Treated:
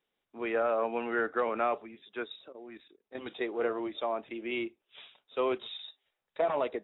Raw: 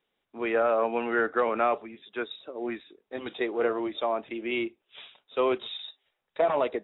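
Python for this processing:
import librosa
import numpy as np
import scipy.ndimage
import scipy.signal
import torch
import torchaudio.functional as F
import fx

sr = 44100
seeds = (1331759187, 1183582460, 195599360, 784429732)

y = fx.level_steps(x, sr, step_db=14, at=(2.48, 3.15))
y = F.gain(torch.from_numpy(y), -4.5).numpy()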